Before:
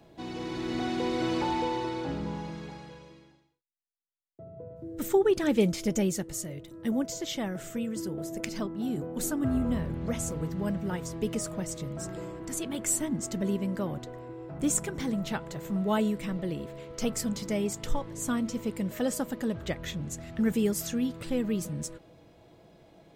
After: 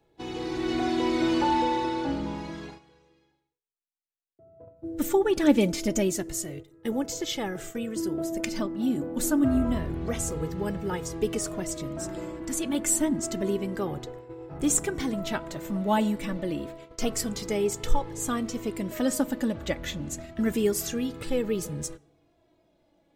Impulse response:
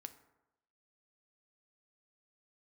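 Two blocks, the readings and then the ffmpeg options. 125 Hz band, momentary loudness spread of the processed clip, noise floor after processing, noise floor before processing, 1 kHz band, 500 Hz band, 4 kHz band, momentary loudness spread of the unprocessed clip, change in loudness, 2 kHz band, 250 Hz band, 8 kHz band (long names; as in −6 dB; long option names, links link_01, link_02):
−0.5 dB, 11 LU, −69 dBFS, −58 dBFS, +5.0 dB, +2.5 dB, +3.5 dB, 11 LU, +3.0 dB, +3.5 dB, +2.5 dB, +3.5 dB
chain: -filter_complex "[0:a]agate=range=-14dB:threshold=-41dB:ratio=16:detection=peak,flanger=delay=2.3:depth=1.2:regen=25:speed=0.28:shape=sinusoidal,asplit=2[link_01][link_02];[1:a]atrim=start_sample=2205[link_03];[link_02][link_03]afir=irnorm=-1:irlink=0,volume=-3dB[link_04];[link_01][link_04]amix=inputs=2:normalize=0,volume=4.5dB"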